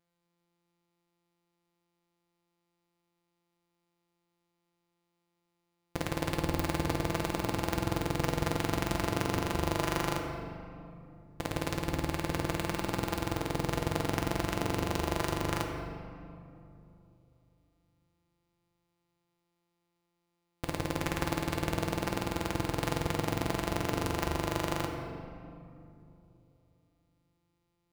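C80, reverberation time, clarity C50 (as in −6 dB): 5.0 dB, 2.8 s, 4.0 dB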